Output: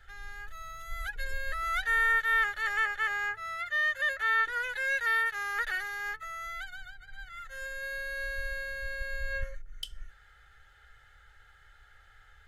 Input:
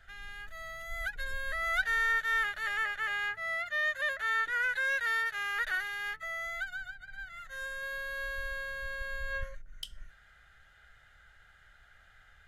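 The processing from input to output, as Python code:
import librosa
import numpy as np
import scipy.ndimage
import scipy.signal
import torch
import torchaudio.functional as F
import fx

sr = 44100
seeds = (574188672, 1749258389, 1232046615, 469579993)

y = x + 0.63 * np.pad(x, (int(2.3 * sr / 1000.0), 0))[:len(x)]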